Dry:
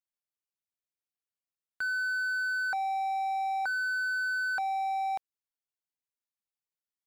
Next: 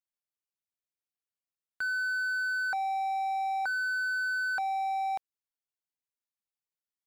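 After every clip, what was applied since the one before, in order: no audible change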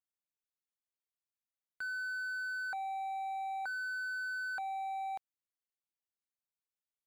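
band-stop 5.4 kHz, Q 8.2; trim -7.5 dB

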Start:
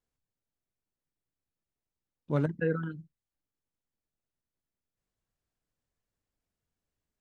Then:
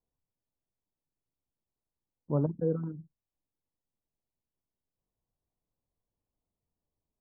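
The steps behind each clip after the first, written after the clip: steep low-pass 1.1 kHz 48 dB/octave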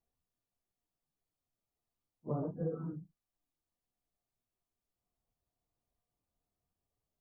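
phase randomisation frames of 100 ms; compression 6:1, threshold -32 dBFS, peak gain reduction 8.5 dB; small resonant body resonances 710/1200 Hz, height 9 dB; trim -1 dB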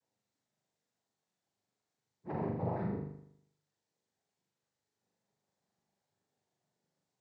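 peak limiter -34.5 dBFS, peak gain reduction 10.5 dB; noise-vocoded speech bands 6; flutter echo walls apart 6.9 m, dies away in 0.72 s; trim +4 dB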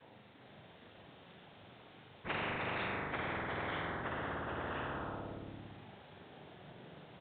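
ever faster or slower copies 401 ms, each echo -3 st, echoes 2; resampled via 8 kHz; spectrum-flattening compressor 10:1; trim -1 dB

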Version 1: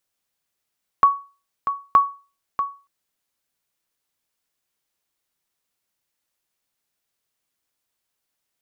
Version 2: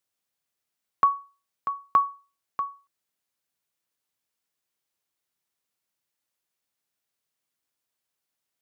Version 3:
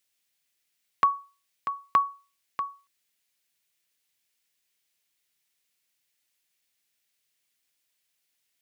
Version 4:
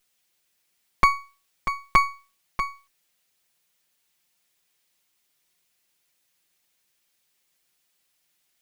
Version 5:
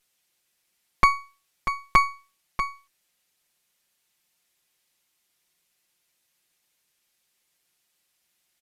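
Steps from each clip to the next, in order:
high-pass 65 Hz; trim -4.5 dB
resonant high shelf 1.6 kHz +7 dB, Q 1.5
comb filter that takes the minimum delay 5.6 ms; trim +6.5 dB
resampled via 32 kHz

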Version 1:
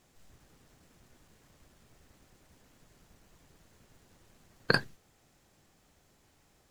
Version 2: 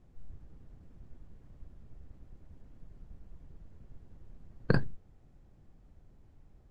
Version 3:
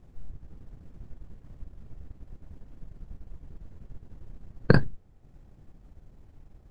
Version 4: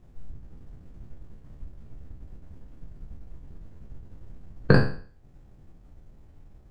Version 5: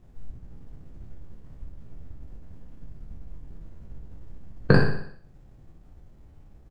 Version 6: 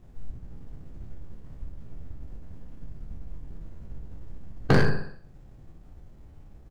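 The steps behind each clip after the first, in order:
tilt EQ -4.5 dB/octave; trim -5.5 dB
transient shaper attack +1 dB, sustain -6 dB; trim +7 dB
spectral sustain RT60 0.45 s; trim -1 dB
feedback delay 61 ms, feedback 52%, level -8.5 dB
hard clipper -15.5 dBFS, distortion -9 dB; trim +2 dB

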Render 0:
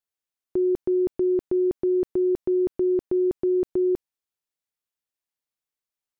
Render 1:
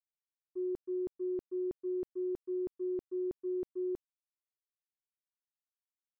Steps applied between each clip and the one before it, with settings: expander -16 dBFS; trim -7 dB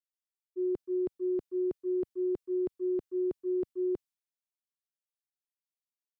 three bands expanded up and down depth 100%; trim +5 dB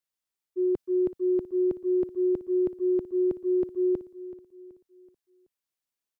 feedback delay 378 ms, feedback 42%, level -16 dB; trim +5.5 dB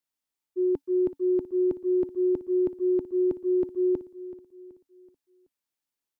small resonant body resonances 280/880 Hz, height 7 dB, ringing for 70 ms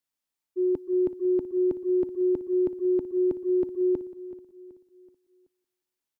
feedback delay 179 ms, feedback 42%, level -20 dB

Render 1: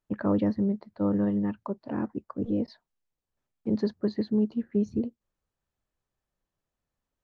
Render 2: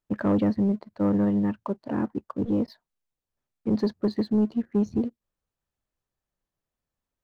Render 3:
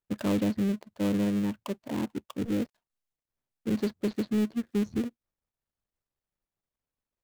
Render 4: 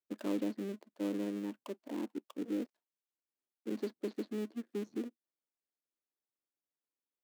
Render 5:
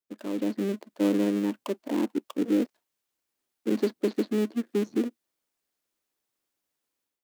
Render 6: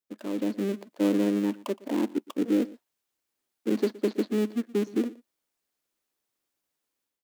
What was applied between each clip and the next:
waveshaping leveller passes 1
dead-time distortion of 0.23 ms; trim -4 dB
ladder high-pass 250 Hz, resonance 45%; trim -1.5 dB
level rider gain up to 12 dB
delay 118 ms -20.5 dB

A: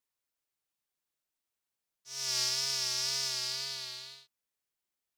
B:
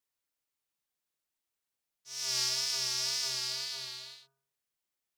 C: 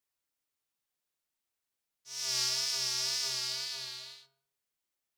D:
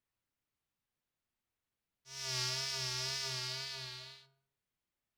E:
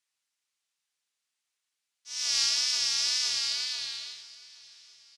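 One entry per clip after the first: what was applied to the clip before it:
de-hum 45.18 Hz, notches 38
flange 0.81 Hz, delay 8.5 ms, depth 1.9 ms, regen +88%; trim +4.5 dB
tone controls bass +10 dB, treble -9 dB
frequency weighting ITU-R 468; feedback delay 820 ms, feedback 38%, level -20 dB

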